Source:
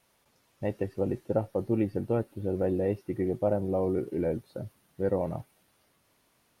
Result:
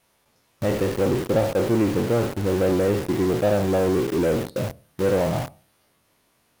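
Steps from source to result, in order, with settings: spectral trails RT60 0.45 s; in parallel at -3.5 dB: companded quantiser 2-bit; on the sum: gain +2 dB

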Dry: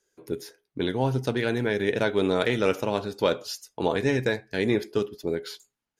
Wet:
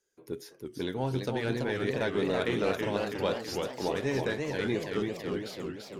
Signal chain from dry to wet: in parallel at -8.5 dB: soft clip -23 dBFS, distortion -9 dB; on the sum: warbling echo 0.332 s, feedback 58%, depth 191 cents, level -4 dB; gain -8.5 dB

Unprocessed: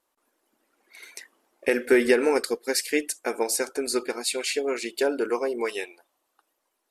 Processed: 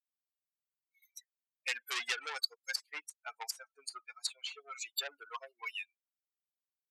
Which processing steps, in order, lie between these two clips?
per-bin expansion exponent 3; soft clip -29 dBFS, distortion -5 dB; HPF 840 Hz 12 dB/oct; differentiator; treble ducked by the level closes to 1100 Hz, closed at -38 dBFS; gain +15.5 dB

